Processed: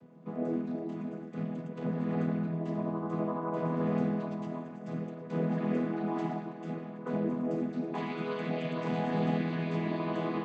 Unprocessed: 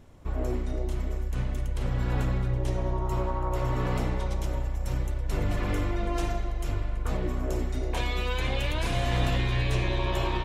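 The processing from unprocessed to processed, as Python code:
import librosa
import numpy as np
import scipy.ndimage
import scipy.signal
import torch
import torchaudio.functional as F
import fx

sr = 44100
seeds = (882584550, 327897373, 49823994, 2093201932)

y = fx.chord_vocoder(x, sr, chord='major triad', root=52)
y = fx.high_shelf(y, sr, hz=3800.0, db=-10.5)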